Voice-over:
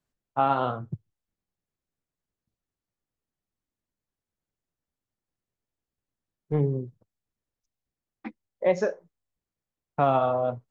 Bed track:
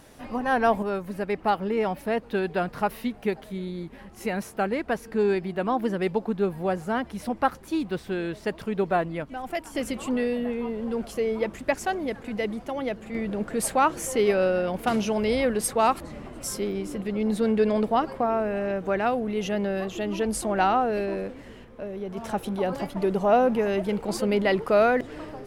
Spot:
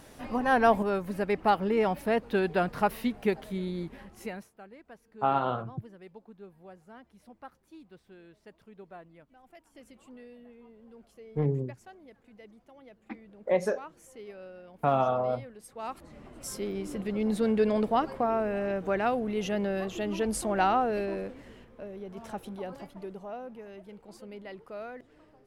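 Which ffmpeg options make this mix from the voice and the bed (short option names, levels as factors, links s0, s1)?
-filter_complex "[0:a]adelay=4850,volume=0.708[s0];[1:a]volume=10,afade=t=out:st=3.85:d=0.65:silence=0.0707946,afade=t=in:st=15.68:d=1.32:silence=0.0944061,afade=t=out:st=20.79:d=2.56:silence=0.125893[s1];[s0][s1]amix=inputs=2:normalize=0"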